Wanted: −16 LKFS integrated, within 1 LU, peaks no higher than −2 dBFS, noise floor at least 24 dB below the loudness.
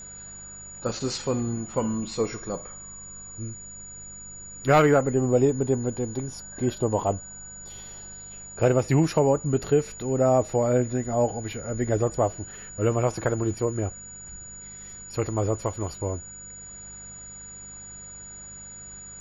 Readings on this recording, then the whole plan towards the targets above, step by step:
mains hum 50 Hz; hum harmonics up to 200 Hz; level of the hum −52 dBFS; interfering tone 6,900 Hz; level of the tone −40 dBFS; integrated loudness −25.5 LKFS; sample peak −9.0 dBFS; target loudness −16.0 LKFS
→ hum removal 50 Hz, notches 4
notch filter 6,900 Hz, Q 30
level +9.5 dB
brickwall limiter −2 dBFS

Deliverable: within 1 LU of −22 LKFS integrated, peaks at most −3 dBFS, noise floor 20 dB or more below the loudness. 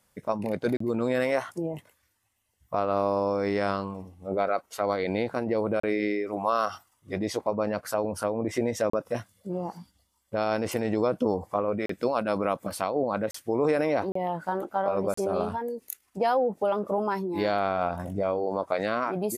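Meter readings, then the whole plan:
number of dropouts 7; longest dropout 34 ms; integrated loudness −28.5 LKFS; sample peak −12.5 dBFS; target loudness −22.0 LKFS
→ repair the gap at 0:00.77/0:05.80/0:08.90/0:11.86/0:13.31/0:14.12/0:15.14, 34 ms
level +6.5 dB

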